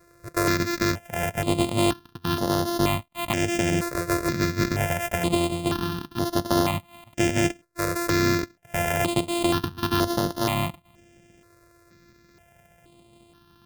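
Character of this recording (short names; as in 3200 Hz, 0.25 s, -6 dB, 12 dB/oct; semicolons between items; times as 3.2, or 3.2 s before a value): a buzz of ramps at a fixed pitch in blocks of 128 samples; notches that jump at a steady rate 2.1 Hz 830–7900 Hz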